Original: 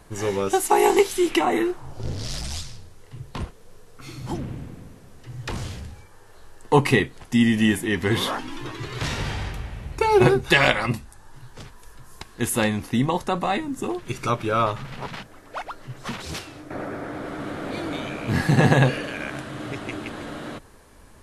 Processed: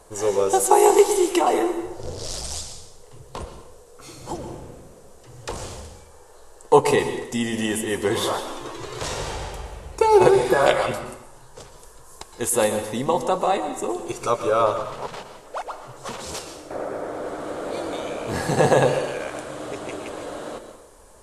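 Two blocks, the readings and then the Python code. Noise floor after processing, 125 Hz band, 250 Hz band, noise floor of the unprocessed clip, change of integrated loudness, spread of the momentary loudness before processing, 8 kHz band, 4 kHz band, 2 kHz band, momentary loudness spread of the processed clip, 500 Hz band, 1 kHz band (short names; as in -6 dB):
-48 dBFS, -7.5 dB, -3.5 dB, -48 dBFS, +1.0 dB, 19 LU, +5.5 dB, -2.5 dB, -4.5 dB, 19 LU, +4.5 dB, +3.0 dB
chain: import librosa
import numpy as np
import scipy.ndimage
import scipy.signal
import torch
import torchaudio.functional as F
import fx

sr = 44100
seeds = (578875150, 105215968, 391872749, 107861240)

y = fx.spec_repair(x, sr, seeds[0], start_s=10.35, length_s=0.29, low_hz=1700.0, high_hz=11000.0, source='before')
y = fx.graphic_eq(y, sr, hz=(125, 250, 500, 1000, 2000, 8000), db=(-6, -5, 10, 4, -4, 10))
y = fx.rev_plate(y, sr, seeds[1], rt60_s=0.83, hf_ratio=0.9, predelay_ms=105, drr_db=8.5)
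y = F.gain(torch.from_numpy(y), -3.0).numpy()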